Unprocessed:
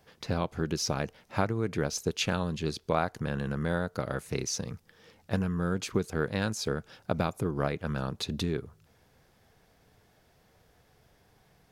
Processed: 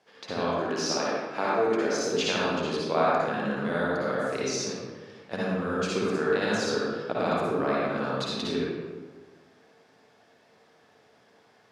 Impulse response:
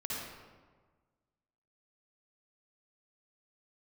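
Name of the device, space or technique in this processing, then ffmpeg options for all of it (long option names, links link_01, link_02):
supermarket ceiling speaker: -filter_complex "[0:a]asettb=1/sr,asplit=3[link_01][link_02][link_03];[link_01]atrim=end=0.514[link_04];[link_02]atrim=start=0.51:end=1.88,asetpts=PTS-STARTPTS,afade=type=in:duration=0.004:curve=qsin,afade=type=out:start_time=1.366:duration=0.004:curve=qsin,highpass=220[link_05];[link_03]atrim=start=1.876[link_06];[link_04][link_05]acrossfade=duration=0.004:curve1=hsin:curve2=qsin[link_07];[link_07][link_06]acrossfade=duration=0.004:curve1=qsin:curve2=hsin,highpass=290,lowpass=6700[link_08];[1:a]atrim=start_sample=2205[link_09];[link_08][link_09]afir=irnorm=-1:irlink=0,volume=3.5dB"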